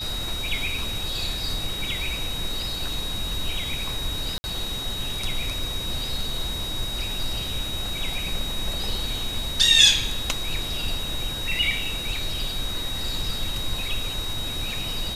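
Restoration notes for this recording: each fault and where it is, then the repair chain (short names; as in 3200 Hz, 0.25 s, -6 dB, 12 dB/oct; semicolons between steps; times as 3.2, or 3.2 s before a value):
tone 3800 Hz -30 dBFS
4.38–4.44 gap 60 ms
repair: notch 3800 Hz, Q 30; interpolate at 4.38, 60 ms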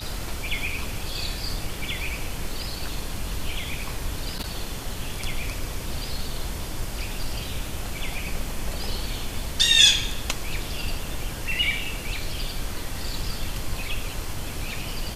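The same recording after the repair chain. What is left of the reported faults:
none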